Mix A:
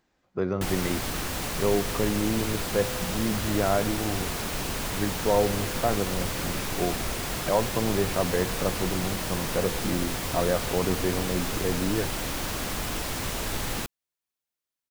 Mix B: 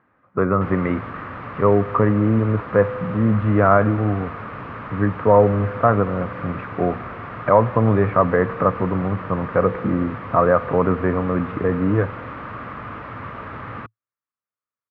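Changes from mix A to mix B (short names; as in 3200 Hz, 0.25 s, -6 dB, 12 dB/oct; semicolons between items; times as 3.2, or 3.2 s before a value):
speech +10.5 dB; master: add speaker cabinet 100–2000 Hz, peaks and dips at 110 Hz +7 dB, 170 Hz -3 dB, 360 Hz -6 dB, 760 Hz -5 dB, 1200 Hz +10 dB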